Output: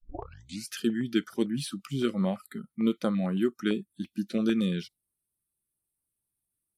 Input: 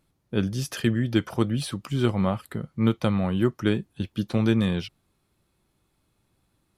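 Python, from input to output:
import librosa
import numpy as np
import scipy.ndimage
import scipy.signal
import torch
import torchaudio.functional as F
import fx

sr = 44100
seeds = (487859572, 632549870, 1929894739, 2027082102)

y = fx.tape_start_head(x, sr, length_s=0.72)
y = fx.noise_reduce_blind(y, sr, reduce_db=22)
y = fx.filter_held_notch(y, sr, hz=8.9, low_hz=610.0, high_hz=3300.0)
y = y * librosa.db_to_amplitude(-2.5)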